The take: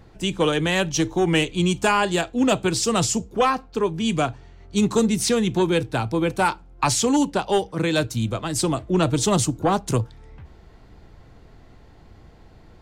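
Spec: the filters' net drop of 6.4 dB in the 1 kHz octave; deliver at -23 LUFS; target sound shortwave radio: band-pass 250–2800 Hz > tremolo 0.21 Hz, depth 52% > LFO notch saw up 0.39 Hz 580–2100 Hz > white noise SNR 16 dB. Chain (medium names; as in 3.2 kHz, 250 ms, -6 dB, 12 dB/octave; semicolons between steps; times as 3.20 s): band-pass 250–2800 Hz; peaking EQ 1 kHz -8.5 dB; tremolo 0.21 Hz, depth 52%; LFO notch saw up 0.39 Hz 580–2100 Hz; white noise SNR 16 dB; trim +7 dB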